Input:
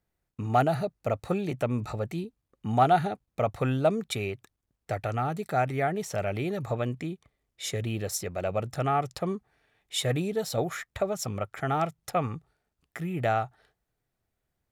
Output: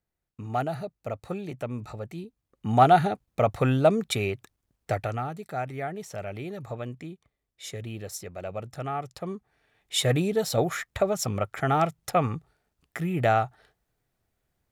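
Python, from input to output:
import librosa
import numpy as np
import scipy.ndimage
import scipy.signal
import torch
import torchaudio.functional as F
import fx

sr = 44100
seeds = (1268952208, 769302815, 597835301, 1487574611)

y = fx.gain(x, sr, db=fx.line((2.15, -5.0), (2.81, 4.0), (4.92, 4.0), (5.36, -5.5), (9.14, -5.5), (9.97, 4.0)))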